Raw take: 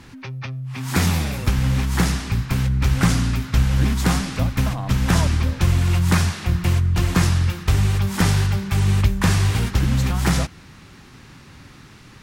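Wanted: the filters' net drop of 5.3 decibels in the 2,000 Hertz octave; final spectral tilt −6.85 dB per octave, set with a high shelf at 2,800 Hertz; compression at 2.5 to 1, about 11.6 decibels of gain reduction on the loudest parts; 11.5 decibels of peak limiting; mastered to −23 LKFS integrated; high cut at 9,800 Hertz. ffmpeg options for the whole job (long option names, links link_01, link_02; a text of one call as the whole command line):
ffmpeg -i in.wav -af "lowpass=9800,equalizer=frequency=2000:width_type=o:gain=-4,highshelf=frequency=2800:gain=-7,acompressor=threshold=-31dB:ratio=2.5,volume=12.5dB,alimiter=limit=-14.5dB:level=0:latency=1" out.wav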